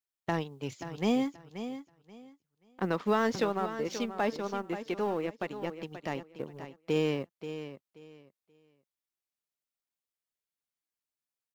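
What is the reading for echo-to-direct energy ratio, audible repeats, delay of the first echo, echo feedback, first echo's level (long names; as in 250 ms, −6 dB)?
−11.0 dB, 2, 531 ms, 22%, −11.0 dB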